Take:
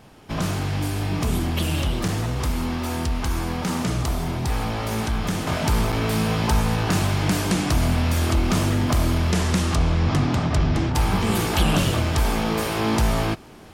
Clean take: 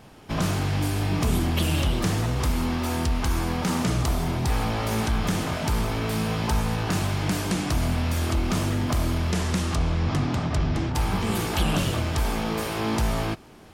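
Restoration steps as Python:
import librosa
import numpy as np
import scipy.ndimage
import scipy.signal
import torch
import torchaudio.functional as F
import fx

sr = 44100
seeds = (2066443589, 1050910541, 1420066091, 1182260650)

y = fx.fix_interpolate(x, sr, at_s=(2.08, 5.92), length_ms=5.5)
y = fx.gain(y, sr, db=fx.steps((0.0, 0.0), (5.47, -4.0)))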